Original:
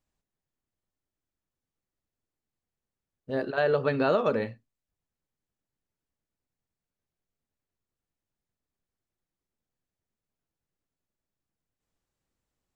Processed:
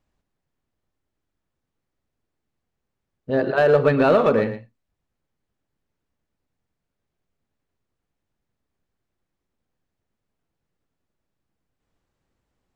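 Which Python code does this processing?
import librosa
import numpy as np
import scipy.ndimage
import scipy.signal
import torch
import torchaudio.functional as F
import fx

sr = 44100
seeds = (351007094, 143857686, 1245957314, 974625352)

p1 = fx.lowpass(x, sr, hz=2600.0, slope=6)
p2 = np.clip(p1, -10.0 ** (-24.0 / 20.0), 10.0 ** (-24.0 / 20.0))
p3 = p1 + (p2 * librosa.db_to_amplitude(-5.5))
p4 = p3 + 10.0 ** (-11.5 / 20.0) * np.pad(p3, (int(116 * sr / 1000.0), 0))[:len(p3)]
y = p4 * librosa.db_to_amplitude(5.5)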